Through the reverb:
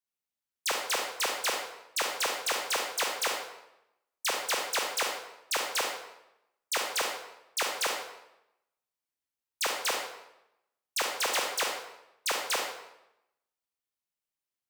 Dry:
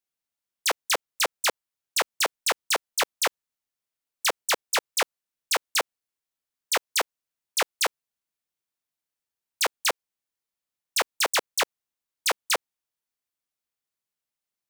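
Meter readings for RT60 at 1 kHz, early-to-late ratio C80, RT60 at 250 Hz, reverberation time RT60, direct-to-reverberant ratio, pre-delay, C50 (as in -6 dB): 0.85 s, 6.0 dB, 0.90 s, 0.85 s, 0.5 dB, 30 ms, 3.0 dB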